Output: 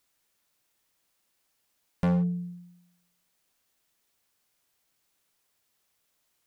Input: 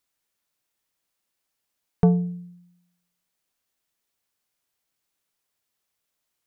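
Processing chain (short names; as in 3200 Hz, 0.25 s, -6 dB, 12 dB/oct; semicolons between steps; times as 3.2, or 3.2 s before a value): in parallel at -1.5 dB: compressor 12:1, threshold -32 dBFS, peak gain reduction 19.5 dB; on the sum: hard clip -22 dBFS, distortion -5 dB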